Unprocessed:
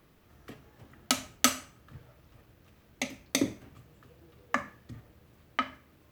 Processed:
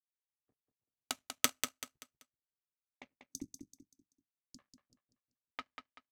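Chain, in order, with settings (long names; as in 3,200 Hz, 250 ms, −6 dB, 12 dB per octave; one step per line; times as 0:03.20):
in parallel at −9.5 dB: dead-zone distortion −48 dBFS
on the sum: power curve on the samples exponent 2
low-pass that shuts in the quiet parts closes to 1,000 Hz, open at −43.5 dBFS
0:03.16–0:04.59: elliptic band-stop filter 290–5,500 Hz, stop band 50 dB
repeating echo 192 ms, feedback 34%, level −7 dB
harmonic and percussive parts rebalanced harmonic −6 dB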